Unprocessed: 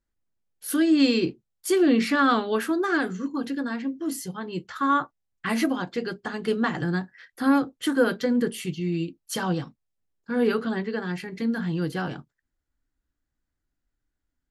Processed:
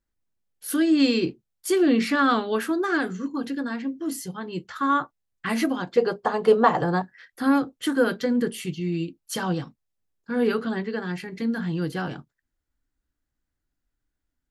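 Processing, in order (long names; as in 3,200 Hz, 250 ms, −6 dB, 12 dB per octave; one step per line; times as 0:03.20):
0:05.97–0:07.02: flat-topped bell 720 Hz +12.5 dB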